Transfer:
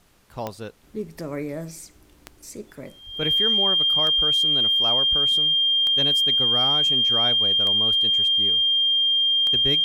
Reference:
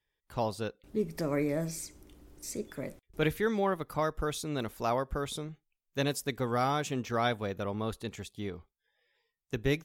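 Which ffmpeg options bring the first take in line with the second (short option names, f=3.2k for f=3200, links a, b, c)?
-filter_complex "[0:a]adeclick=t=4,bandreject=f=3.2k:w=30,asplit=3[a][b][c];[a]afade=t=out:st=3.05:d=0.02[d];[b]highpass=f=140:w=0.5412,highpass=f=140:w=1.3066,afade=t=in:st=3.05:d=0.02,afade=t=out:st=3.17:d=0.02[e];[c]afade=t=in:st=3.17:d=0.02[f];[d][e][f]amix=inputs=3:normalize=0,agate=range=-21dB:threshold=-43dB"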